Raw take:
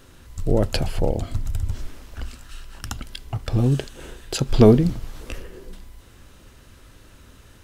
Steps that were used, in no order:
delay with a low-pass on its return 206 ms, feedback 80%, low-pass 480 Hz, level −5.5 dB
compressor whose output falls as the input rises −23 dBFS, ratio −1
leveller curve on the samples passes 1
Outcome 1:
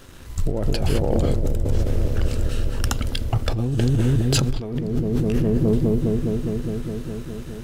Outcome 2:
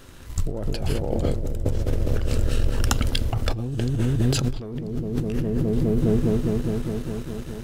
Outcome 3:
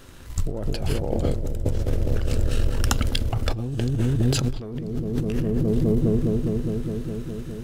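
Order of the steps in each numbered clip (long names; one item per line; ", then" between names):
delay with a low-pass on its return, then compressor whose output falls as the input rises, then leveller curve on the samples
delay with a low-pass on its return, then leveller curve on the samples, then compressor whose output falls as the input rises
leveller curve on the samples, then delay with a low-pass on its return, then compressor whose output falls as the input rises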